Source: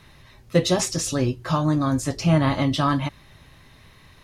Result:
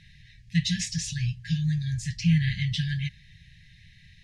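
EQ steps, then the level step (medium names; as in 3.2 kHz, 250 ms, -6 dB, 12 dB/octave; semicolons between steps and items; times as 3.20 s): brick-wall FIR band-stop 210–1600 Hz; distance through air 110 m; treble shelf 6.1 kHz +6.5 dB; -1.5 dB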